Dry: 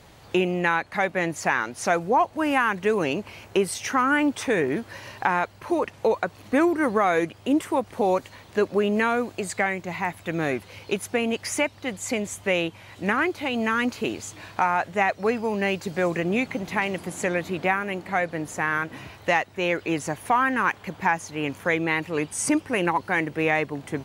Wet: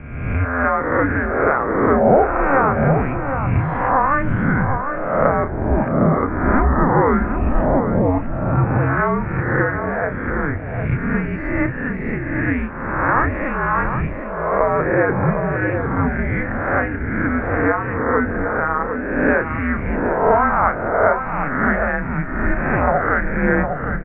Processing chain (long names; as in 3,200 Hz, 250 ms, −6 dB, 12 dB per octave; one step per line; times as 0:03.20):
peak hold with a rise ahead of every peak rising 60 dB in 1.20 s
double-tracking delay 32 ms −7.5 dB
slap from a distant wall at 130 metres, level −6 dB
single-sideband voice off tune −280 Hz 280–2,100 Hz
level +3 dB